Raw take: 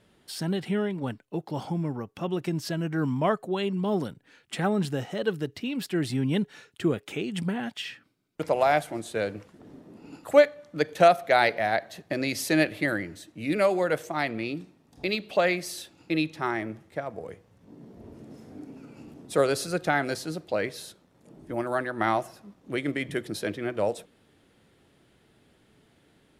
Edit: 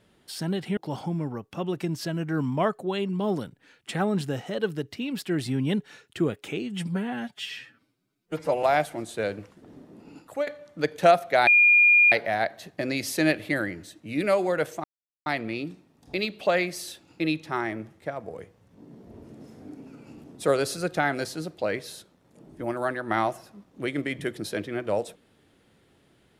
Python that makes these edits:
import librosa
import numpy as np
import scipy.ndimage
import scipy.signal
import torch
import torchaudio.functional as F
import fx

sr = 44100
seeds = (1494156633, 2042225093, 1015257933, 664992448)

y = fx.edit(x, sr, fx.cut(start_s=0.77, length_s=0.64),
    fx.stretch_span(start_s=7.26, length_s=1.34, factor=1.5),
    fx.fade_out_to(start_s=10.03, length_s=0.41, floor_db=-16.0),
    fx.insert_tone(at_s=11.44, length_s=0.65, hz=2420.0, db=-13.5),
    fx.insert_silence(at_s=14.16, length_s=0.42), tone=tone)